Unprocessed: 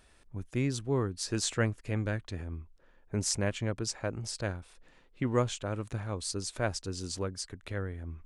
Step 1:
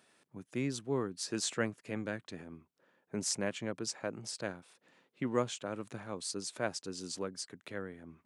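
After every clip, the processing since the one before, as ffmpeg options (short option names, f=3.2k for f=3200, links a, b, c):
-af "highpass=f=150:w=0.5412,highpass=f=150:w=1.3066,volume=-3dB"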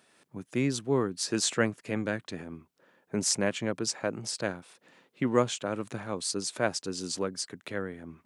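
-af "dynaudnorm=f=110:g=3:m=4dB,volume=3dB"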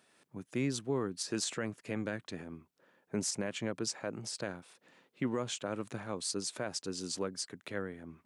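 -af "alimiter=limit=-19.5dB:level=0:latency=1:release=87,volume=-4dB"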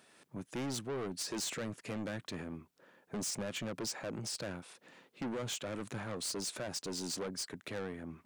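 -af "asoftclip=type=tanh:threshold=-39dB,volume=4.5dB"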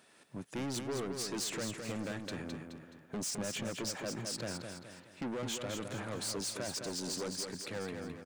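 -af "aecho=1:1:212|424|636|848|1060:0.501|0.21|0.0884|0.0371|0.0156"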